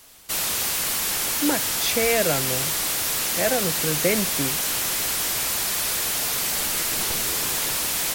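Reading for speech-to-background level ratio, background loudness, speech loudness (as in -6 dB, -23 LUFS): -4.0 dB, -22.0 LUFS, -26.0 LUFS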